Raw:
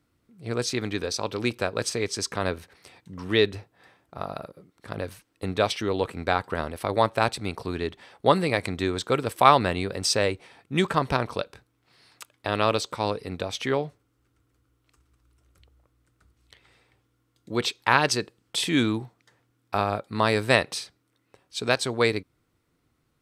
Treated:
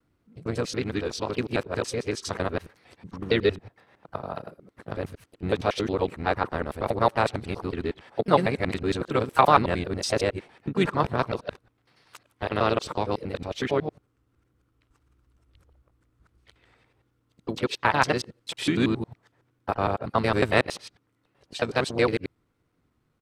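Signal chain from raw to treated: local time reversal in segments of 92 ms; high shelf 3100 Hz -8.5 dB; vibrato 1.6 Hz 48 cents; harmoniser -5 st -11 dB, +3 st -14 dB

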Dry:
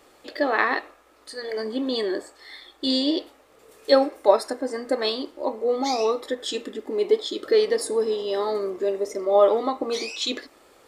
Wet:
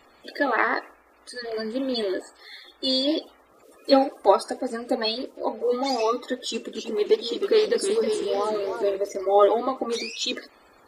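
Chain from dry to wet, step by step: bin magnitudes rounded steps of 30 dB; 6.42–8.97 warbling echo 0.319 s, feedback 36%, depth 215 cents, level -8 dB

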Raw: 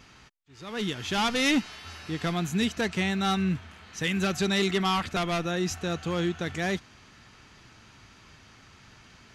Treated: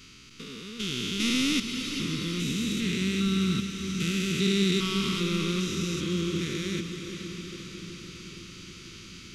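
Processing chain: stepped spectrum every 0.4 s; expander -51 dBFS; bell 1700 Hz -14.5 dB 0.4 oct; in parallel at 0 dB: upward compressor, threshold -33 dBFS; on the sum: Butterworth band-stop 730 Hz, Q 0.66; bell 85 Hz -7 dB 2.3 oct; diffused feedback echo 0.462 s, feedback 66%, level -8 dB

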